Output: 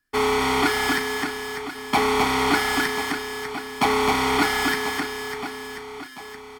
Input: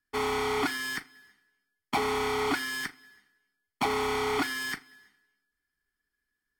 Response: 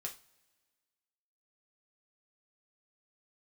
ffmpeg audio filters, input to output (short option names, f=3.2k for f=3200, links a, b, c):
-filter_complex "[0:a]asplit=2[a][b];[b]adelay=35,volume=-13.5dB[c];[a][c]amix=inputs=2:normalize=0,asplit=2[d][e];[e]aecho=0:1:260|598|1037|1609|2351:0.631|0.398|0.251|0.158|0.1[f];[d][f]amix=inputs=2:normalize=0,volume=7.5dB"